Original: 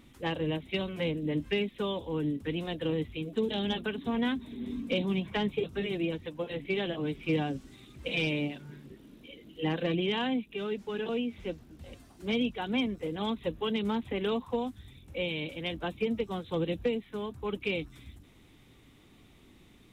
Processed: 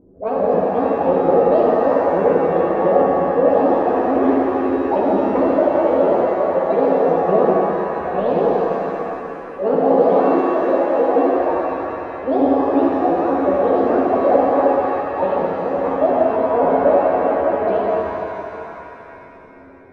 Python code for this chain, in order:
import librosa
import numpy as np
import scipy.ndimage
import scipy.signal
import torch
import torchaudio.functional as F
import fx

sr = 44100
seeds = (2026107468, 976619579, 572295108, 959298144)

p1 = fx.pitch_ramps(x, sr, semitones=10.0, every_ms=177)
p2 = scipy.signal.sosfilt(scipy.signal.butter(2, 1100.0, 'lowpass', fs=sr, output='sos'), p1)
p3 = fx.peak_eq(p2, sr, hz=560.0, db=14.5, octaves=1.6)
p4 = fx.env_lowpass(p3, sr, base_hz=430.0, full_db=-16.5)
p5 = p4 + fx.room_early_taps(p4, sr, ms=(11, 75), db=(-5.5, -5.0), dry=0)
p6 = fx.rev_shimmer(p5, sr, seeds[0], rt60_s=3.0, semitones=7, shimmer_db=-8, drr_db=-2.5)
y = F.gain(torch.from_numpy(p6), 1.0).numpy()